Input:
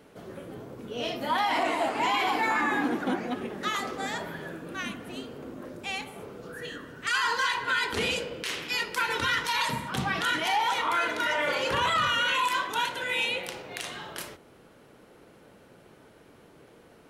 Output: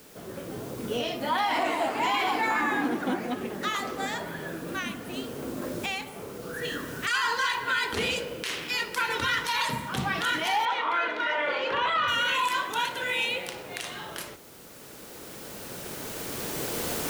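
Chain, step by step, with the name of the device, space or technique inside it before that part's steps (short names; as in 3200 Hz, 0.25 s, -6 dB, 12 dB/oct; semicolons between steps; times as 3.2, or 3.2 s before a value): cheap recorder with automatic gain (white noise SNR 24 dB; recorder AGC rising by 7.8 dB/s); 10.65–12.08 three-band isolator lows -14 dB, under 250 Hz, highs -23 dB, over 4200 Hz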